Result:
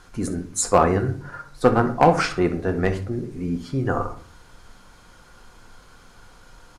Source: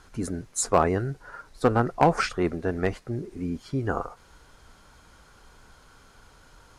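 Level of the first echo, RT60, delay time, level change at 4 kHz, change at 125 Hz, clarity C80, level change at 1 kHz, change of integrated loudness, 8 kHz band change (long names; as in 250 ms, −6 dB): −14.5 dB, 0.50 s, 63 ms, +4.0 dB, +4.5 dB, 17.5 dB, +4.5 dB, +4.5 dB, +4.0 dB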